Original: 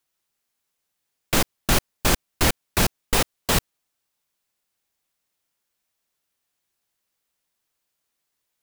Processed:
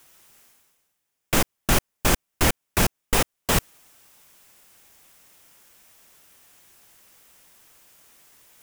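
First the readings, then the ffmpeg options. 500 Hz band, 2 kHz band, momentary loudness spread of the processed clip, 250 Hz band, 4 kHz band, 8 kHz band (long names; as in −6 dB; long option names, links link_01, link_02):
0.0 dB, 0.0 dB, 2 LU, 0.0 dB, −2.5 dB, −0.5 dB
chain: -af "equalizer=frequency=4200:width=2.9:gain=-5,areverse,acompressor=mode=upward:threshold=-35dB:ratio=2.5,areverse"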